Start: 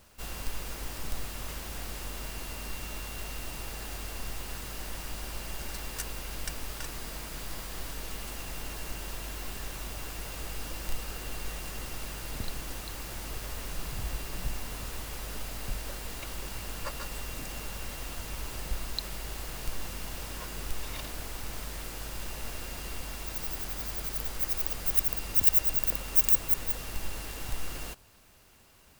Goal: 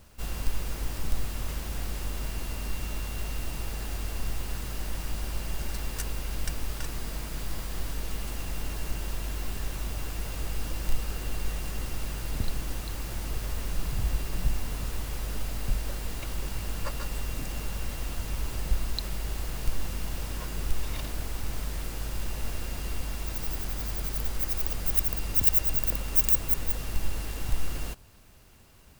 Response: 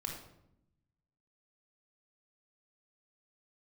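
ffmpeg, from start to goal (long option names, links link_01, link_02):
-af "lowshelf=frequency=270:gain=8"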